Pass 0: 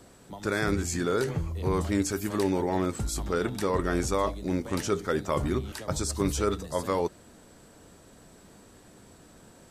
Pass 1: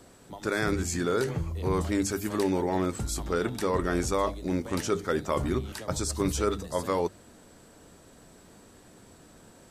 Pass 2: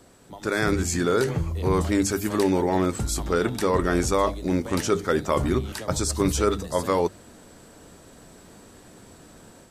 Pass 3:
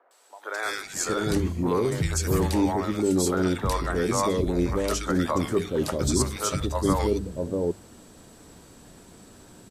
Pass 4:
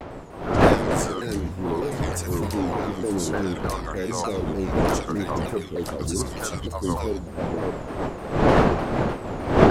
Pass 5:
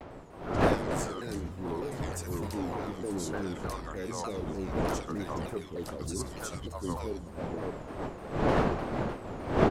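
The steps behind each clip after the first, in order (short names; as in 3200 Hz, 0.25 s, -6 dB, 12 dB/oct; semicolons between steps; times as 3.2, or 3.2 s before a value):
notches 50/100/150/200 Hz
AGC gain up to 5 dB
three bands offset in time mids, highs, lows 0.11/0.64 s, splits 560/1700 Hz
wind noise 620 Hz -22 dBFS; shaped vibrato saw down 3.3 Hz, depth 250 cents; gain -3 dB
echo 0.361 s -19.5 dB; gain -9 dB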